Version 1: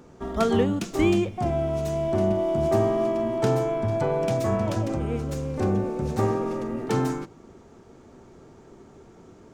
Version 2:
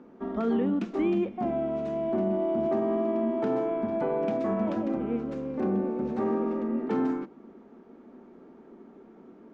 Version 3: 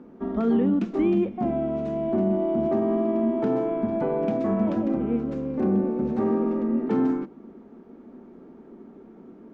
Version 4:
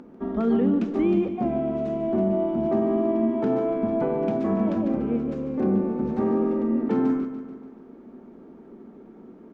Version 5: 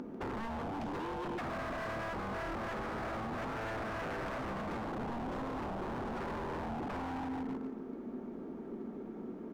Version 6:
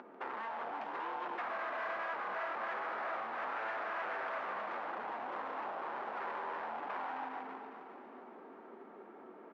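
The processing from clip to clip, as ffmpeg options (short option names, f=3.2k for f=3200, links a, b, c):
-af "lowpass=2.3k,lowshelf=f=160:t=q:w=3:g=-11.5,alimiter=limit=-15dB:level=0:latency=1:release=27,volume=-4dB"
-af "lowshelf=f=330:g=8"
-filter_complex "[0:a]acompressor=mode=upward:threshold=-45dB:ratio=2.5,asplit=2[a][b];[b]aecho=0:1:145|290|435|580|725|870:0.282|0.161|0.0916|0.0522|0.0298|0.017[c];[a][c]amix=inputs=2:normalize=0"
-af "alimiter=limit=-22.5dB:level=0:latency=1:release=40,acompressor=threshold=-31dB:ratio=6,aeval=exprs='0.0168*(abs(mod(val(0)/0.0168+3,4)-2)-1)':c=same,volume=2dB"
-af "flanger=delay=4.8:depth=6.2:regen=-54:speed=1:shape=triangular,highpass=770,lowpass=2.3k,aecho=1:1:407|814|1221|1628|2035:0.299|0.149|0.0746|0.0373|0.0187,volume=7.5dB"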